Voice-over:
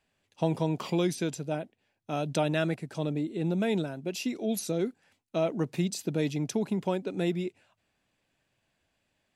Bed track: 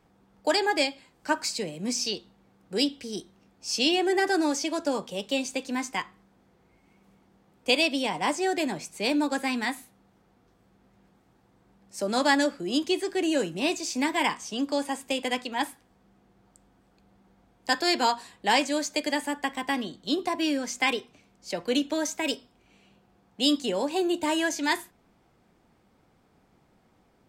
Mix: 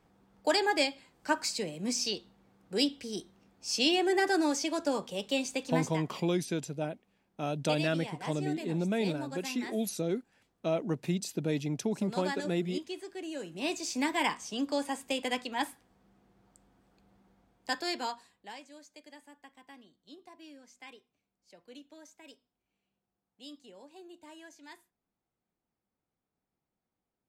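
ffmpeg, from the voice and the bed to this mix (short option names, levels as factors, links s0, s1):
-filter_complex "[0:a]adelay=5300,volume=0.75[s0];[1:a]volume=2.24,afade=t=out:st=5.78:d=0.24:silence=0.281838,afade=t=in:st=13.39:d=0.45:silence=0.316228,afade=t=out:st=17.17:d=1.38:silence=0.0891251[s1];[s0][s1]amix=inputs=2:normalize=0"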